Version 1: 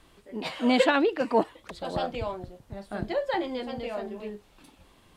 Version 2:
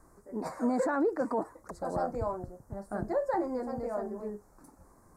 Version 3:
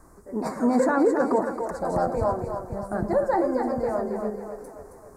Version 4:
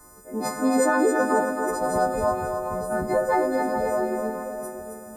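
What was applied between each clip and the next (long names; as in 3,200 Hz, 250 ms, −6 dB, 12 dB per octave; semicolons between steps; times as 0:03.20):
Chebyshev band-stop filter 1,300–6,900 Hz, order 2; brickwall limiter −21 dBFS, peak gain reduction 10 dB
echo with a time of its own for lows and highs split 400 Hz, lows 102 ms, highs 270 ms, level −6.5 dB; level +7 dB
every partial snapped to a pitch grid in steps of 3 semitones; echo through a band-pass that steps 211 ms, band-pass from 3,200 Hz, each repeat −1.4 octaves, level −2 dB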